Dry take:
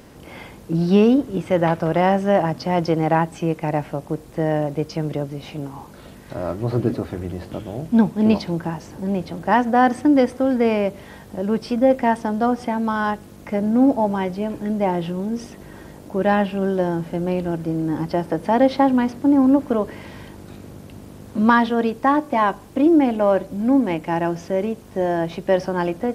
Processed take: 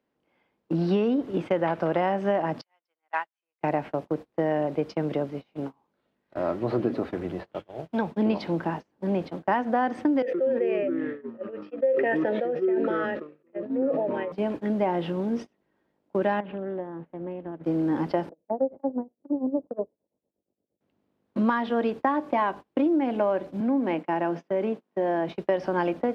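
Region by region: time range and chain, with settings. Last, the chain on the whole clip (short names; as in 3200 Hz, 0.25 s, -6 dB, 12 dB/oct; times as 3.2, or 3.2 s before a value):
2.61–3.61 HPF 1300 Hz + upward expander 2.5:1, over -37 dBFS
7.39–8.11 bell 250 Hz -12 dB 0.9 oct + three-band squash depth 40%
10.22–14.32 vowel filter e + echoes that change speed 0.119 s, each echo -6 st, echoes 2, each echo -6 dB + sustainer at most 23 dB/s
16.4–17.64 compressor 12:1, threshold -24 dBFS + air absorption 490 m + Doppler distortion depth 0.2 ms
18.29–20.81 ladder low-pass 710 Hz, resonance 40% + tremolo 8.6 Hz, depth 87%
23.6–25.29 HPF 150 Hz 24 dB/oct + high shelf 4300 Hz -6.5 dB + compressor 2:1, threshold -21 dBFS
whole clip: gate -29 dBFS, range -31 dB; three-band isolator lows -14 dB, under 190 Hz, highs -18 dB, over 4300 Hz; compressor 10:1, threshold -20 dBFS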